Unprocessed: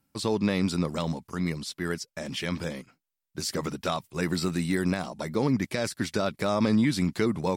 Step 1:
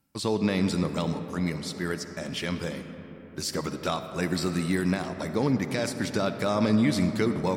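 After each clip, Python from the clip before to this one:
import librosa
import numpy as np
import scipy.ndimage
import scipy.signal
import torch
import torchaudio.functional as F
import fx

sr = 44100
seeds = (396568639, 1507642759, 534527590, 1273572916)

y = fx.rev_freeverb(x, sr, rt60_s=4.7, hf_ratio=0.35, predelay_ms=20, drr_db=8.5)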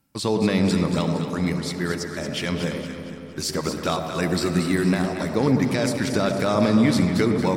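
y = fx.echo_alternate(x, sr, ms=115, hz=930.0, feedback_pct=68, wet_db=-5.0)
y = y * librosa.db_to_amplitude(4.0)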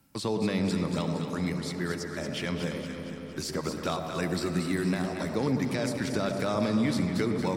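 y = fx.band_squash(x, sr, depth_pct=40)
y = y * librosa.db_to_amplitude(-7.5)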